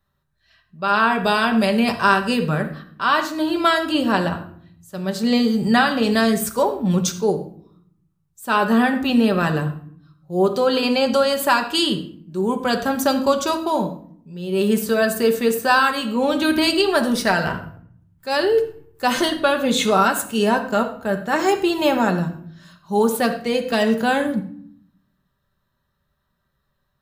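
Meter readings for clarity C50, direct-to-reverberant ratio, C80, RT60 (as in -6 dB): 10.5 dB, 4.5 dB, 13.5 dB, 0.60 s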